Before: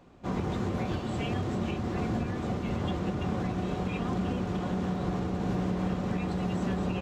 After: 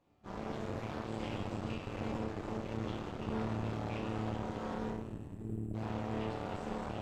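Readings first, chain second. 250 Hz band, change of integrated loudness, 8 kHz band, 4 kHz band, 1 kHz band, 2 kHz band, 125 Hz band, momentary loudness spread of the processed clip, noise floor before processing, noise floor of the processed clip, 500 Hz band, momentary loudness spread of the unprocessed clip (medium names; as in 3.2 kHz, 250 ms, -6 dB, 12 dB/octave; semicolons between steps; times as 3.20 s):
-9.5 dB, -8.0 dB, no reading, -7.0 dB, -6.0 dB, -6.5 dB, -9.0 dB, 4 LU, -35 dBFS, -46 dBFS, -6.0 dB, 2 LU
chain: band-stop 1.5 kHz; spectral selection erased 4.89–5.74 s, 220–7400 Hz; chord resonator D2 sus4, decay 0.68 s; on a send: flutter echo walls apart 11.2 m, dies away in 0.24 s; on the sum: FDN reverb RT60 2.6 s, high-frequency decay 0.9×, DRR 4.5 dB; Chebyshev shaper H 3 -21 dB, 6 -11 dB, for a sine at -29.5 dBFS; trim +4 dB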